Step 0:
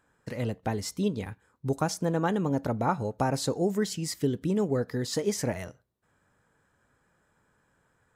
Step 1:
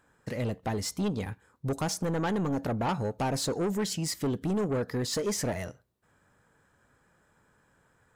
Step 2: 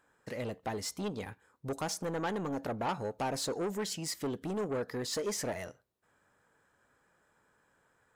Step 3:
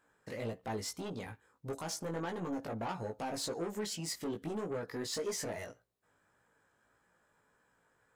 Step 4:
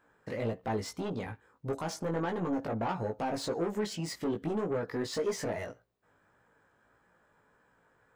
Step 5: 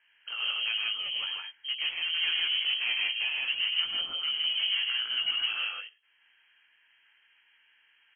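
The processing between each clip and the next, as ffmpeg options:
ffmpeg -i in.wav -af "asoftclip=type=tanh:threshold=-27.5dB,volume=3dB" out.wav
ffmpeg -i in.wav -af "bass=frequency=250:gain=-8,treble=frequency=4000:gain=-1,volume=-3dB" out.wav
ffmpeg -i in.wav -af "alimiter=level_in=4.5dB:limit=-24dB:level=0:latency=1:release=49,volume=-4.5dB,flanger=delay=17:depth=2.1:speed=1.7,volume=1dB" out.wav
ffmpeg -i in.wav -af "equalizer=frequency=12000:width_type=o:width=2.3:gain=-11.5,volume=6dB" out.wav
ffmpeg -i in.wav -af "aecho=1:1:102|157.4:0.501|0.891,lowpass=frequency=2800:width_type=q:width=0.5098,lowpass=frequency=2800:width_type=q:width=0.6013,lowpass=frequency=2800:width_type=q:width=0.9,lowpass=frequency=2800:width_type=q:width=2.563,afreqshift=-3300" out.wav

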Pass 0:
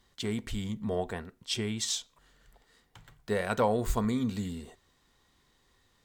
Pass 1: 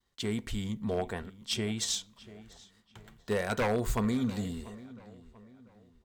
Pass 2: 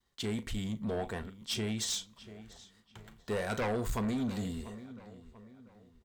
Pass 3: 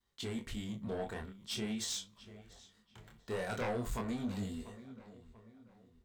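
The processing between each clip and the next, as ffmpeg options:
ffmpeg -i in.wav -filter_complex "[0:a]agate=range=-33dB:threshold=-59dB:ratio=3:detection=peak,aeval=exprs='0.0794*(abs(mod(val(0)/0.0794+3,4)-2)-1)':channel_layout=same,asplit=2[link_01][link_02];[link_02]adelay=690,lowpass=frequency=2900:poles=1,volume=-18dB,asplit=2[link_03][link_04];[link_04]adelay=690,lowpass=frequency=2900:poles=1,volume=0.4,asplit=2[link_05][link_06];[link_06]adelay=690,lowpass=frequency=2900:poles=1,volume=0.4[link_07];[link_01][link_03][link_05][link_07]amix=inputs=4:normalize=0" out.wav
ffmpeg -i in.wav -filter_complex "[0:a]asplit=2[link_01][link_02];[link_02]adelay=37,volume=-14dB[link_03];[link_01][link_03]amix=inputs=2:normalize=0,asoftclip=type=tanh:threshold=-28dB" out.wav
ffmpeg -i in.wav -af "flanger=delay=20:depth=6.5:speed=0.45,volume=-1dB" out.wav

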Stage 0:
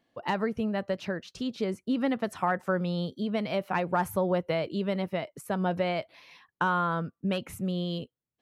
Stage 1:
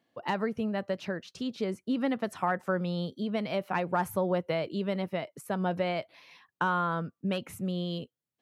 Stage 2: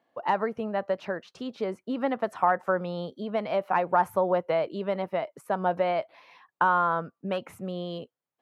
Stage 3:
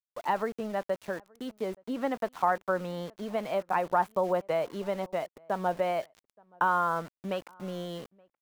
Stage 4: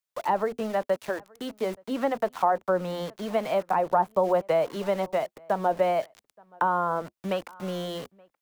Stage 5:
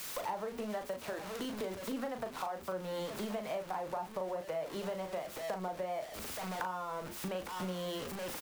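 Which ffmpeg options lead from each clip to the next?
ffmpeg -i in.wav -af "highpass=91,volume=-1.5dB" out.wav
ffmpeg -i in.wav -af "equalizer=frequency=850:width=0.45:gain=15,volume=-7.5dB" out.wav
ffmpeg -i in.wav -filter_complex "[0:a]areverse,acompressor=mode=upward:threshold=-39dB:ratio=2.5,areverse,aeval=exprs='val(0)*gte(abs(val(0)),0.00944)':channel_layout=same,asplit=2[link_01][link_02];[link_02]adelay=874.6,volume=-28dB,highshelf=frequency=4000:gain=-19.7[link_03];[link_01][link_03]amix=inputs=2:normalize=0,volume=-3dB" out.wav
ffmpeg -i in.wav -filter_complex "[0:a]acrossover=split=500|880[link_01][link_02][link_03];[link_01]flanger=delay=5.8:depth=5:regen=-48:speed=1.1:shape=sinusoidal[link_04];[link_03]acompressor=threshold=-41dB:ratio=6[link_05];[link_04][link_02][link_05]amix=inputs=3:normalize=0,volume=7dB" out.wav
ffmpeg -i in.wav -filter_complex "[0:a]aeval=exprs='val(0)+0.5*0.0266*sgn(val(0))':channel_layout=same,acompressor=threshold=-33dB:ratio=6,asplit=2[link_01][link_02];[link_02]adelay=38,volume=-7dB[link_03];[link_01][link_03]amix=inputs=2:normalize=0,volume=-4dB" out.wav

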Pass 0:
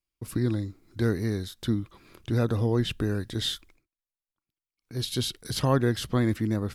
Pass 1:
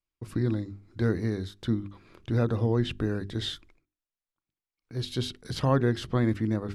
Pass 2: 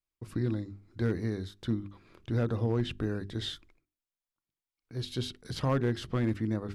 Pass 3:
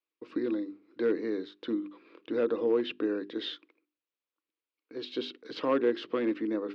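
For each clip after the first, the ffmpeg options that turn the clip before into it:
ffmpeg -i in.wav -af "lowpass=9900,highshelf=frequency=4200:gain=-10,bandreject=frequency=50:width_type=h:width=6,bandreject=frequency=100:width_type=h:width=6,bandreject=frequency=150:width_type=h:width=6,bandreject=frequency=200:width_type=h:width=6,bandreject=frequency=250:width_type=h:width=6,bandreject=frequency=300:width_type=h:width=6,bandreject=frequency=350:width_type=h:width=6,bandreject=frequency=400:width_type=h:width=6" out.wav
ffmpeg -i in.wav -af "asoftclip=type=hard:threshold=-18dB,volume=-3.5dB" out.wav
ffmpeg -i in.wav -af "highpass=frequency=270:width=0.5412,highpass=frequency=270:width=1.3066,equalizer=frequency=300:width_type=q:width=4:gain=8,equalizer=frequency=480:width_type=q:width=4:gain=9,equalizer=frequency=730:width_type=q:width=4:gain=-5,equalizer=frequency=1100:width_type=q:width=4:gain=3,equalizer=frequency=2600:width_type=q:width=4:gain=5,lowpass=frequency=4300:width=0.5412,lowpass=frequency=4300:width=1.3066" out.wav

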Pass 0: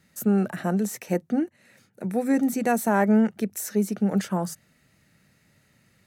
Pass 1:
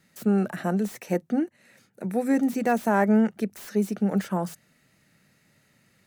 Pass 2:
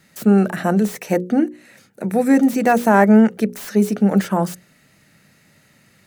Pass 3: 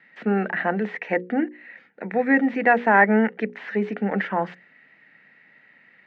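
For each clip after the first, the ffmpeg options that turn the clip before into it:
ffmpeg -i in.wav -filter_complex "[0:a]acrossover=split=2500[link_01][link_02];[link_01]equalizer=frequency=65:width_type=o:width=1.4:gain=-8[link_03];[link_02]aeval=exprs='0.0126*(abs(mod(val(0)/0.0126+3,4)-2)-1)':channel_layout=same[link_04];[link_03][link_04]amix=inputs=2:normalize=0" out.wav
ffmpeg -i in.wav -af "bandreject=frequency=60:width_type=h:width=6,bandreject=frequency=120:width_type=h:width=6,bandreject=frequency=180:width_type=h:width=6,bandreject=frequency=240:width_type=h:width=6,bandreject=frequency=300:width_type=h:width=6,bandreject=frequency=360:width_type=h:width=6,bandreject=frequency=420:width_type=h:width=6,bandreject=frequency=480:width_type=h:width=6,bandreject=frequency=540:width_type=h:width=6,volume=9dB" out.wav
ffmpeg -i in.wav -af "highpass=350,equalizer=frequency=370:width_type=q:width=4:gain=-5,equalizer=frequency=600:width_type=q:width=4:gain=-6,equalizer=frequency=1200:width_type=q:width=4:gain=-6,equalizer=frequency=1900:width_type=q:width=4:gain=9,lowpass=frequency=2700:width=0.5412,lowpass=frequency=2700:width=1.3066" out.wav

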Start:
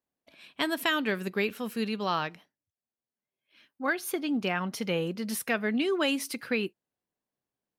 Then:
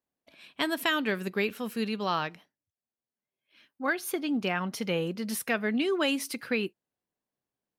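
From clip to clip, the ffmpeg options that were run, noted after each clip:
ffmpeg -i in.wav -af anull out.wav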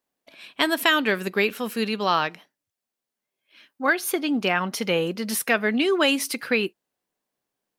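ffmpeg -i in.wav -af "equalizer=frequency=72:width_type=o:width=2.9:gain=-9.5,volume=8dB" out.wav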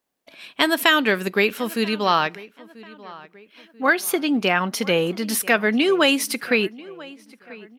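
ffmpeg -i in.wav -filter_complex "[0:a]asplit=2[link_01][link_02];[link_02]adelay=988,lowpass=frequency=2800:poles=1,volume=-20dB,asplit=2[link_03][link_04];[link_04]adelay=988,lowpass=frequency=2800:poles=1,volume=0.44,asplit=2[link_05][link_06];[link_06]adelay=988,lowpass=frequency=2800:poles=1,volume=0.44[link_07];[link_01][link_03][link_05][link_07]amix=inputs=4:normalize=0,volume=3dB" out.wav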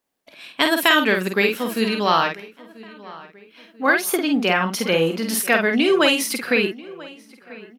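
ffmpeg -i in.wav -filter_complex "[0:a]asplit=2[link_01][link_02];[link_02]adelay=49,volume=-5dB[link_03];[link_01][link_03]amix=inputs=2:normalize=0" out.wav

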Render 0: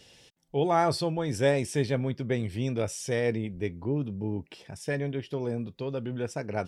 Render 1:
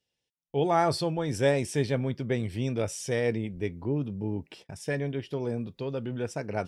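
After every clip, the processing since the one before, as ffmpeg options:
ffmpeg -i in.wav -af "agate=range=-28dB:threshold=-49dB:ratio=16:detection=peak" out.wav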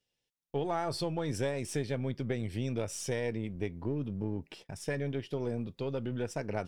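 ffmpeg -i in.wav -af "aeval=exprs='if(lt(val(0),0),0.708*val(0),val(0))':channel_layout=same,acompressor=threshold=-29dB:ratio=6" out.wav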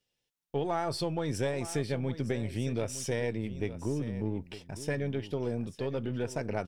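ffmpeg -i in.wav -af "aecho=1:1:910:0.211,volume=1.5dB" out.wav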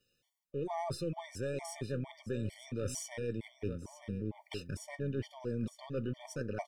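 ffmpeg -i in.wav -af "areverse,acompressor=threshold=-38dB:ratio=16,areverse,afftfilt=real='re*gt(sin(2*PI*2.2*pts/sr)*(1-2*mod(floor(b*sr/1024/600),2)),0)':imag='im*gt(sin(2*PI*2.2*pts/sr)*(1-2*mod(floor(b*sr/1024/600),2)),0)':win_size=1024:overlap=0.75,volume=6.5dB" out.wav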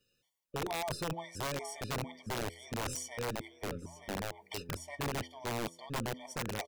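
ffmpeg -i in.wav -filter_complex "[0:a]bandreject=frequency=84.27:width_type=h:width=4,bandreject=frequency=168.54:width_type=h:width=4,bandreject=frequency=252.81:width_type=h:width=4,bandreject=frequency=337.08:width_type=h:width=4,bandreject=frequency=421.35:width_type=h:width=4,bandreject=frequency=505.62:width_type=h:width=4,bandreject=frequency=589.89:width_type=h:width=4,asplit=2[link_01][link_02];[link_02]adelay=330,highpass=300,lowpass=3400,asoftclip=type=hard:threshold=-33.5dB,volume=-26dB[link_03];[link_01][link_03]amix=inputs=2:normalize=0,aeval=exprs='(mod(33.5*val(0)+1,2)-1)/33.5':channel_layout=same,volume=1dB" out.wav

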